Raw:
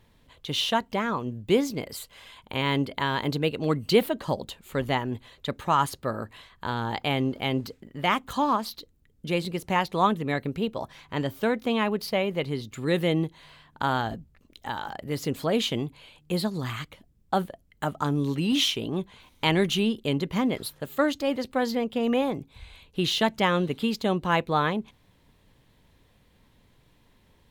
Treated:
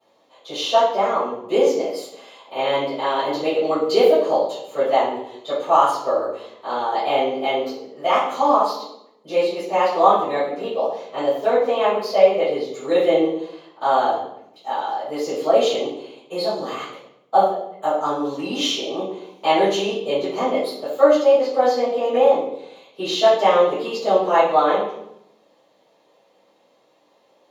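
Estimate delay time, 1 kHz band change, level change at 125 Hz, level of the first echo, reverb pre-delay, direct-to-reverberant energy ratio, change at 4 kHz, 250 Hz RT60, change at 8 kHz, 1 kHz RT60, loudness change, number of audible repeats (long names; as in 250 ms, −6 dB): no echo audible, +9.5 dB, −12.5 dB, no echo audible, 3 ms, −17.5 dB, +2.0 dB, 1.0 s, +2.5 dB, 0.75 s, +7.5 dB, no echo audible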